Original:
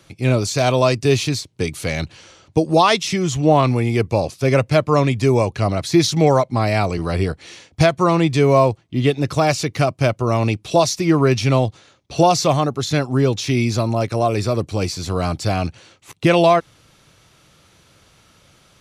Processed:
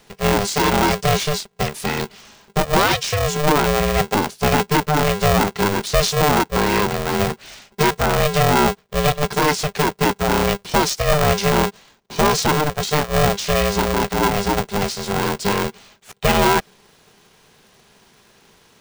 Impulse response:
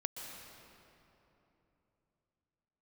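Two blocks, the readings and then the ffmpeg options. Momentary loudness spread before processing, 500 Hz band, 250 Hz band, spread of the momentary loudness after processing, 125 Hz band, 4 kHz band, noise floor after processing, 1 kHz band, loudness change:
9 LU, −2.0 dB, −2.5 dB, 7 LU, −4.0 dB, +2.5 dB, −54 dBFS, +1.5 dB, −0.5 dB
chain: -af "alimiter=limit=-7.5dB:level=0:latency=1:release=20,aeval=exprs='val(0)*sgn(sin(2*PI*300*n/s))':channel_layout=same"

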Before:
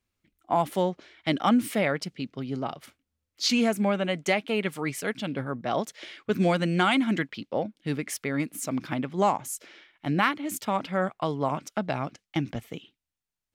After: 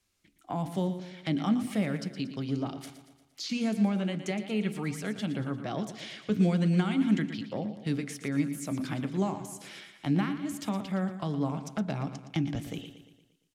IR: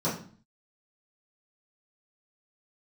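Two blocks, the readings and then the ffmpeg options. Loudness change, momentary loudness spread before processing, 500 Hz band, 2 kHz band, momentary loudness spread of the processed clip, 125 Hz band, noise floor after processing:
−3.5 dB, 11 LU, −8.0 dB, −9.5 dB, 12 LU, +1.5 dB, −68 dBFS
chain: -filter_complex "[0:a]aemphasis=mode=production:type=75fm,acrossover=split=3000[link_01][link_02];[link_02]acompressor=threshold=-29dB:ratio=4:attack=1:release=60[link_03];[link_01][link_03]amix=inputs=2:normalize=0,lowpass=7700,acrossover=split=270[link_04][link_05];[link_05]acompressor=threshold=-44dB:ratio=3[link_06];[link_04][link_06]amix=inputs=2:normalize=0,aecho=1:1:116|232|348|464|580|696:0.266|0.138|0.0719|0.0374|0.0195|0.0101,asplit=2[link_07][link_08];[1:a]atrim=start_sample=2205,asetrate=70560,aresample=44100[link_09];[link_08][link_09]afir=irnorm=-1:irlink=0,volume=-20.5dB[link_10];[link_07][link_10]amix=inputs=2:normalize=0,volume=3dB"

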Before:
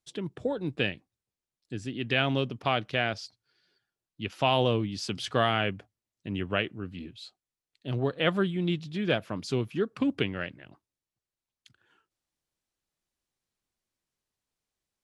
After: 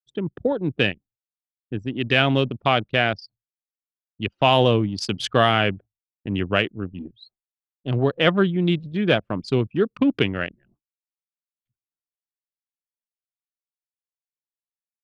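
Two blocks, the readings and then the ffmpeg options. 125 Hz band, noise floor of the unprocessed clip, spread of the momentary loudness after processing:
+8.0 dB, below −85 dBFS, 15 LU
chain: -af "acontrast=25,agate=range=-33dB:threshold=-49dB:ratio=3:detection=peak,anlmdn=25.1,volume=3dB"

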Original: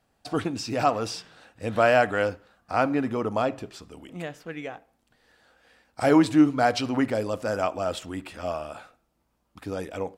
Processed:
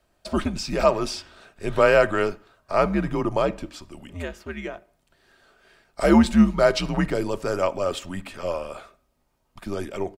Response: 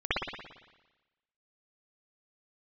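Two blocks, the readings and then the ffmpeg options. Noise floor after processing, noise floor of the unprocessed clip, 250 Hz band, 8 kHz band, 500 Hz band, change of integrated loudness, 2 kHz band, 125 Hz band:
−69 dBFS, −72 dBFS, +2.0 dB, +2.5 dB, +3.5 dB, +2.5 dB, +1.5 dB, +4.0 dB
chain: -af "afreqshift=-89,aecho=1:1:3.2:0.31,volume=2.5dB"

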